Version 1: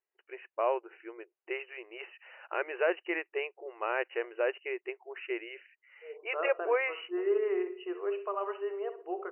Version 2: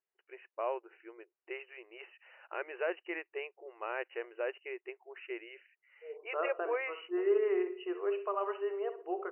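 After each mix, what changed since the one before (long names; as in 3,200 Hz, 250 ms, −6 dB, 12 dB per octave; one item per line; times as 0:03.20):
first voice −6.0 dB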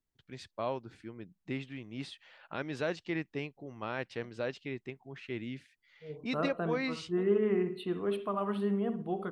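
master: remove linear-phase brick-wall band-pass 340–3,000 Hz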